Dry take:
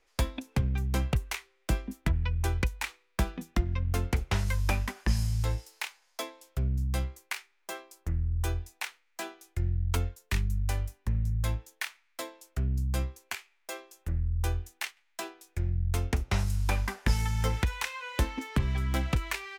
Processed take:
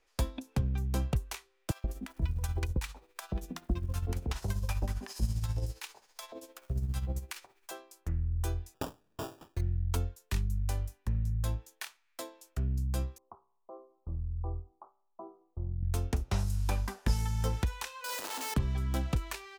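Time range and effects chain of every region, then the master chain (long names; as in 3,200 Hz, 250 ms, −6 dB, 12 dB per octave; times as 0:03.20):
0:01.71–0:07.71: mu-law and A-law mismatch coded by mu + amplitude tremolo 15 Hz, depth 58% + multiband delay without the direct sound highs, lows 130 ms, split 770 Hz
0:08.74–0:09.61: low-pass filter 7,300 Hz 24 dB per octave + high-shelf EQ 2,900 Hz +10 dB + sample-rate reduction 2,100 Hz
0:13.18–0:15.83: Butterworth low-pass 1,200 Hz 96 dB per octave + tuned comb filter 65 Hz, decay 0.62 s, mix 40%
0:18.04–0:18.54: sign of each sample alone + high-pass filter 460 Hz + flutter between parallel walls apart 10.7 metres, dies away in 0.42 s
whole clip: notch filter 2,100 Hz, Q 21; dynamic equaliser 2,100 Hz, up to −7 dB, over −51 dBFS, Q 1; level −2.5 dB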